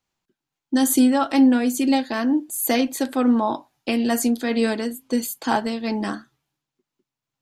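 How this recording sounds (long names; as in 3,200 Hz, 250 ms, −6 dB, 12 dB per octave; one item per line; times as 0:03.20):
tremolo triangle 2.2 Hz, depth 35%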